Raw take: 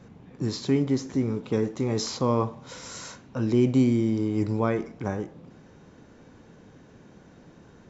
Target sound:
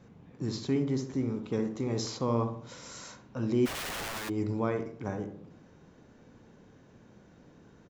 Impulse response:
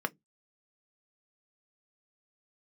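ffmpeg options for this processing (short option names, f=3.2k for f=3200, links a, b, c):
-filter_complex "[0:a]asplit=2[a][b];[b]adelay=68,lowpass=f=1.2k:p=1,volume=-6.5dB,asplit=2[c][d];[d]adelay=68,lowpass=f=1.2k:p=1,volume=0.49,asplit=2[e][f];[f]adelay=68,lowpass=f=1.2k:p=1,volume=0.49,asplit=2[g][h];[h]adelay=68,lowpass=f=1.2k:p=1,volume=0.49,asplit=2[i][j];[j]adelay=68,lowpass=f=1.2k:p=1,volume=0.49,asplit=2[k][l];[l]adelay=68,lowpass=f=1.2k:p=1,volume=0.49[m];[a][c][e][g][i][k][m]amix=inputs=7:normalize=0,asplit=3[n][o][p];[n]afade=t=out:st=3.65:d=0.02[q];[o]aeval=exprs='(mod(20*val(0)+1,2)-1)/20':c=same,afade=t=in:st=3.65:d=0.02,afade=t=out:st=4.28:d=0.02[r];[p]afade=t=in:st=4.28:d=0.02[s];[q][r][s]amix=inputs=3:normalize=0,volume=-6dB"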